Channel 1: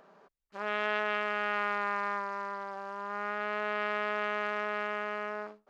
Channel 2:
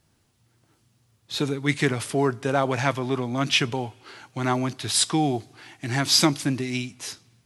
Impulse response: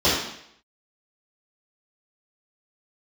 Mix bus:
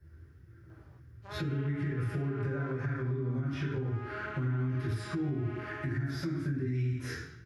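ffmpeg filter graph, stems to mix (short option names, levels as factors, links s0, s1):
-filter_complex "[0:a]flanger=delay=20:depth=6.7:speed=0.76,adelay=700,volume=0.596[s0];[1:a]acompressor=threshold=0.0447:ratio=6,firequalizer=gain_entry='entry(130,0);entry(190,-16);entry(350,-7);entry(590,-19);entry(940,-23);entry(1500,-1);entry(3000,-26);entry(7000,-24);entry(12000,-13)':delay=0.05:min_phase=1,volume=0.944,asplit=2[s1][s2];[s2]volume=0.531[s3];[2:a]atrim=start_sample=2205[s4];[s3][s4]afir=irnorm=-1:irlink=0[s5];[s0][s1][s5]amix=inputs=3:normalize=0,acrossover=split=230[s6][s7];[s7]acompressor=threshold=0.0178:ratio=2[s8];[s6][s8]amix=inputs=2:normalize=0,alimiter=level_in=1.19:limit=0.0631:level=0:latency=1:release=233,volume=0.841"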